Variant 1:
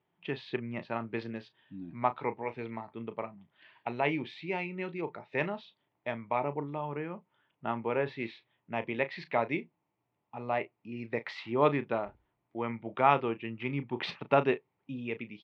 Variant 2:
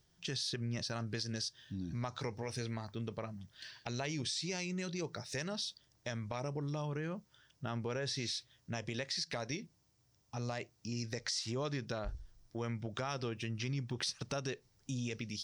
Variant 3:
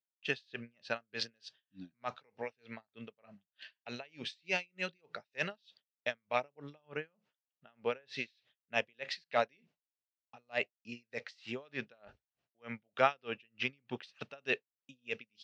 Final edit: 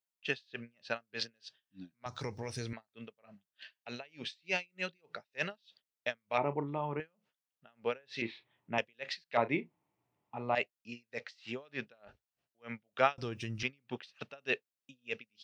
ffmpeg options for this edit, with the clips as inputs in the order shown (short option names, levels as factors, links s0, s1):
-filter_complex "[1:a]asplit=2[s0][s1];[0:a]asplit=3[s2][s3][s4];[2:a]asplit=6[s5][s6][s7][s8][s9][s10];[s5]atrim=end=2.062[s11];[s0]atrim=start=2.058:end=2.732[s12];[s6]atrim=start=2.728:end=6.382[s13];[s2]atrim=start=6.378:end=7.002[s14];[s7]atrim=start=6.998:end=8.222[s15];[s3]atrim=start=8.218:end=8.782[s16];[s8]atrim=start=8.778:end=9.372[s17];[s4]atrim=start=9.368:end=10.552[s18];[s9]atrim=start=10.548:end=13.182[s19];[s1]atrim=start=13.178:end=13.632[s20];[s10]atrim=start=13.628[s21];[s11][s12]acrossfade=d=0.004:c1=hsin:c2=hsin[s22];[s22][s13]acrossfade=d=0.004:c1=hsin:c2=hsin[s23];[s23][s14]acrossfade=d=0.004:c1=hsin:c2=hsin[s24];[s24][s15]acrossfade=d=0.004:c1=hsin:c2=hsin[s25];[s25][s16]acrossfade=d=0.004:c1=hsin:c2=hsin[s26];[s26][s17]acrossfade=d=0.004:c1=hsin:c2=hsin[s27];[s27][s18]acrossfade=d=0.004:c1=hsin:c2=hsin[s28];[s28][s19]acrossfade=d=0.004:c1=hsin:c2=hsin[s29];[s29][s20]acrossfade=d=0.004:c1=hsin:c2=hsin[s30];[s30][s21]acrossfade=d=0.004:c1=hsin:c2=hsin"